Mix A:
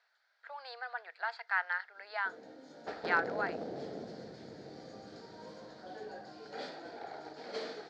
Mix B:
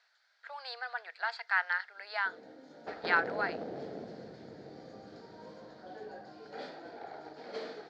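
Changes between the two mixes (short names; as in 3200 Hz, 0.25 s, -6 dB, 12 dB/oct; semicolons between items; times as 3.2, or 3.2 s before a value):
first sound: add LPF 1300 Hz 6 dB/oct; second sound: add LPF 3000 Hz; master: add high shelf 2300 Hz +8.5 dB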